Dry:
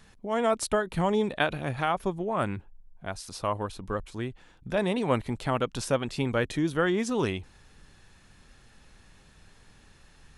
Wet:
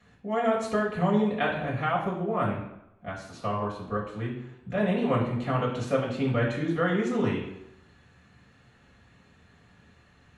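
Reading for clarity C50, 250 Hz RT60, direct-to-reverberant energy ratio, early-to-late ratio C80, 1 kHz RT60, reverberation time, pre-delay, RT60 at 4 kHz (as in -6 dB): 5.0 dB, 0.75 s, -6.5 dB, 8.0 dB, 0.85 s, 0.85 s, 3 ms, 0.65 s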